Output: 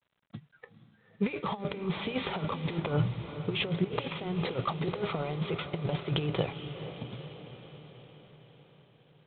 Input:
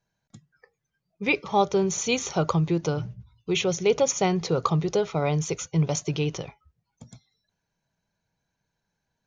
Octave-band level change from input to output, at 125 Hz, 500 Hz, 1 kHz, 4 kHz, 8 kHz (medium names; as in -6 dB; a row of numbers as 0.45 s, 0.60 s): -5.0 dB, -9.5 dB, -8.5 dB, -4.0 dB, under -40 dB